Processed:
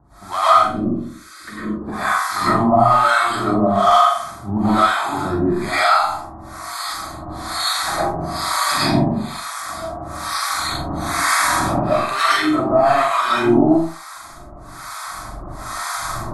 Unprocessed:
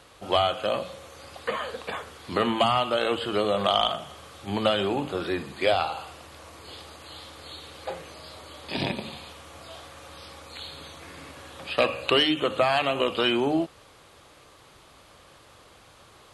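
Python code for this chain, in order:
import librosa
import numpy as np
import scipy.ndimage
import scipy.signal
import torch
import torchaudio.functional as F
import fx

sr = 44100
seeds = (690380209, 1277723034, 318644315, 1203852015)

p1 = fx.recorder_agc(x, sr, target_db=-12.0, rise_db_per_s=6.1, max_gain_db=30)
p2 = fx.curve_eq(p1, sr, hz=(140.0, 340.0, 740.0, 1400.0, 3300.0, 5400.0), db=(0, 11, -27, -12, -7, -11), at=(0.55, 1.82))
p3 = 10.0 ** (-16.5 / 20.0) * np.tanh(p2 / 10.0 ** (-16.5 / 20.0))
p4 = p2 + (p3 * 10.0 ** (-4.0 / 20.0))
p5 = fx.fixed_phaser(p4, sr, hz=1200.0, stages=4)
p6 = fx.room_flutter(p5, sr, wall_m=7.3, rt60_s=0.52)
p7 = fx.rev_freeverb(p6, sr, rt60_s=0.42, hf_ratio=0.7, predelay_ms=75, drr_db=-10.0)
p8 = fx.harmonic_tremolo(p7, sr, hz=1.1, depth_pct=100, crossover_hz=760.0)
y = p8 * 10.0 ** (3.0 / 20.0)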